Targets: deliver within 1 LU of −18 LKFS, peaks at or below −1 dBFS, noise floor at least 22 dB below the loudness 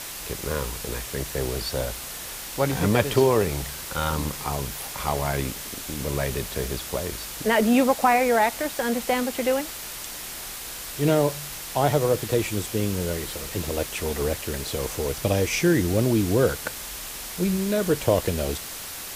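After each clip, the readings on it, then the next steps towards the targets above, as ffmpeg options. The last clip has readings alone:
background noise floor −36 dBFS; target noise floor −47 dBFS; integrated loudness −25.0 LKFS; sample peak −6.0 dBFS; target loudness −18.0 LKFS
→ -af "afftdn=noise_reduction=11:noise_floor=-36"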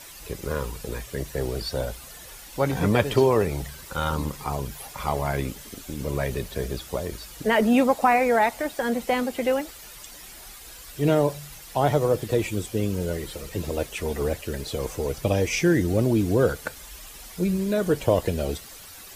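background noise floor −44 dBFS; target noise floor −48 dBFS
→ -af "afftdn=noise_reduction=6:noise_floor=-44"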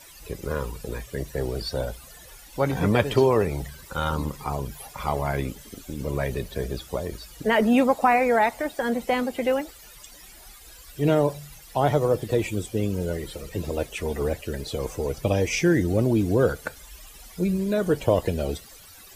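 background noise floor −47 dBFS; target noise floor −48 dBFS
→ -af "afftdn=noise_reduction=6:noise_floor=-47"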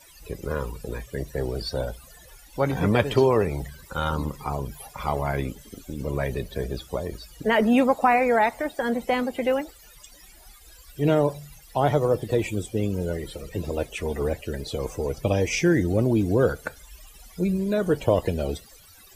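background noise floor −51 dBFS; integrated loudness −25.5 LKFS; sample peak −6.5 dBFS; target loudness −18.0 LKFS
→ -af "volume=7.5dB,alimiter=limit=-1dB:level=0:latency=1"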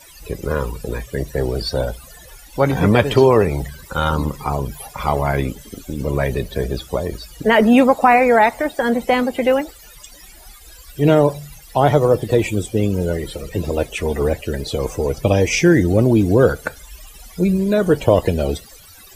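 integrated loudness −18.0 LKFS; sample peak −1.0 dBFS; background noise floor −43 dBFS

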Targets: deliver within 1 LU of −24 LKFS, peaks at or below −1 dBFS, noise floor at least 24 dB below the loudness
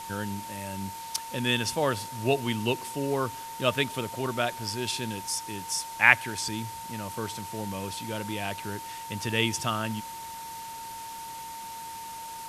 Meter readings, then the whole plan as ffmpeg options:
interfering tone 910 Hz; level of the tone −38 dBFS; background noise floor −40 dBFS; target noise floor −54 dBFS; integrated loudness −30.0 LKFS; sample peak −2.0 dBFS; target loudness −24.0 LKFS
→ -af "bandreject=frequency=910:width=30"
-af "afftdn=noise_reduction=14:noise_floor=-40"
-af "volume=6dB,alimiter=limit=-1dB:level=0:latency=1"

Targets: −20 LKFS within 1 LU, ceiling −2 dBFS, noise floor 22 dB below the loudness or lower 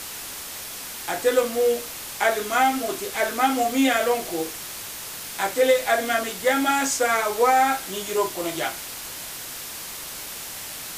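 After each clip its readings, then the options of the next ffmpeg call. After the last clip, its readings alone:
background noise floor −36 dBFS; target noise floor −46 dBFS; integrated loudness −24.0 LKFS; sample peak −7.0 dBFS; target loudness −20.0 LKFS
→ -af "afftdn=noise_reduction=10:noise_floor=-36"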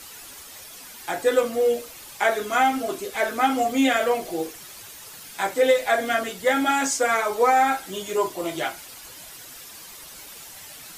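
background noise floor −43 dBFS; target noise floor −45 dBFS
→ -af "afftdn=noise_reduction=6:noise_floor=-43"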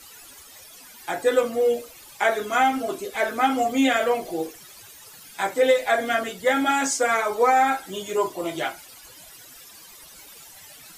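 background noise floor −47 dBFS; integrated loudness −23.0 LKFS; sample peak −7.5 dBFS; target loudness −20.0 LKFS
→ -af "volume=3dB"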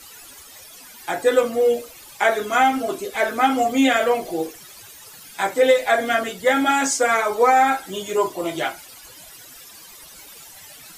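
integrated loudness −20.0 LKFS; sample peak −4.5 dBFS; background noise floor −44 dBFS

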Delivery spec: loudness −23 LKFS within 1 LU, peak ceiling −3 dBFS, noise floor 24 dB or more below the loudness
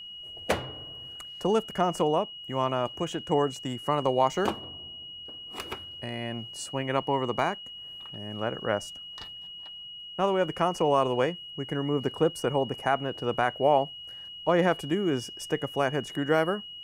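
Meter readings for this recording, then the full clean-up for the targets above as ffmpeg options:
interfering tone 2,900 Hz; level of the tone −40 dBFS; integrated loudness −28.5 LKFS; sample peak −11.0 dBFS; target loudness −23.0 LKFS
→ -af "bandreject=frequency=2900:width=30"
-af "volume=5.5dB"

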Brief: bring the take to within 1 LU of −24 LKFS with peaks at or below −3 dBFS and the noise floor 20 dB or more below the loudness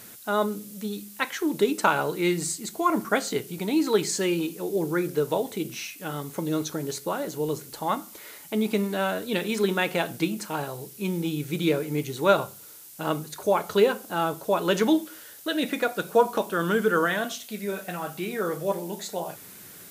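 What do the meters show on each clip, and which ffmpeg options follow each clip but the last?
background noise floor −46 dBFS; target noise floor −47 dBFS; integrated loudness −27.0 LKFS; sample peak −4.5 dBFS; target loudness −24.0 LKFS
→ -af "afftdn=noise_reduction=6:noise_floor=-46"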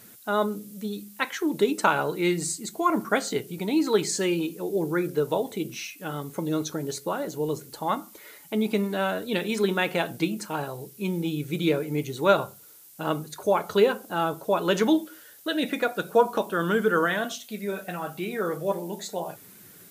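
background noise floor −50 dBFS; integrated loudness −27.0 LKFS; sample peak −5.0 dBFS; target loudness −24.0 LKFS
→ -af "volume=3dB,alimiter=limit=-3dB:level=0:latency=1"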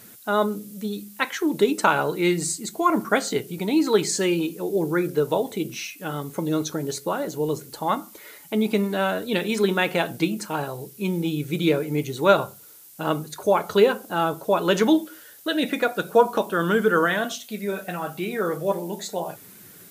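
integrated loudness −24.0 LKFS; sample peak −3.0 dBFS; background noise floor −47 dBFS

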